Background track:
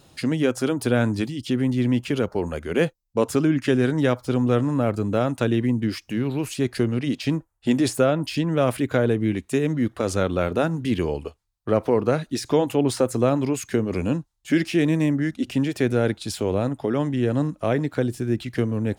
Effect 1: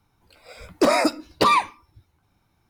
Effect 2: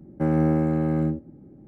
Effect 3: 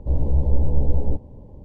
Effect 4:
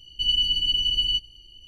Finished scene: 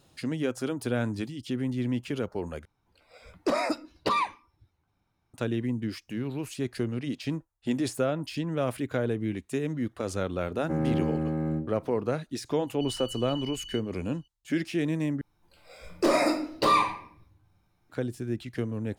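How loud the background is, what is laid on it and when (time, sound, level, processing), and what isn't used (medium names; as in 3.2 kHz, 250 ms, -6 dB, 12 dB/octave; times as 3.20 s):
background track -8 dB
2.65 s: replace with 1 -8.5 dB + treble shelf 8.5 kHz -9.5 dB
10.49 s: add 2 -6 dB
12.61 s: add 4 -18 dB
15.21 s: replace with 1 -8.5 dB + simulated room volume 96 m³, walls mixed, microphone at 0.86 m
not used: 3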